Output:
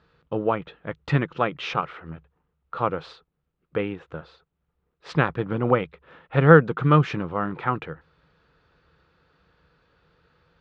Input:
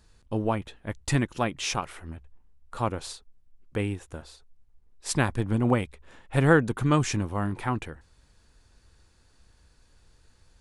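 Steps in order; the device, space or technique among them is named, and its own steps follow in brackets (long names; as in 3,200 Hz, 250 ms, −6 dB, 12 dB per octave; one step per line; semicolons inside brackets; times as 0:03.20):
guitar cabinet (loudspeaker in its box 93–3,600 Hz, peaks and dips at 100 Hz −8 dB, 160 Hz +9 dB, 230 Hz −6 dB, 480 Hz +7 dB, 1,300 Hz +9 dB)
level +1.5 dB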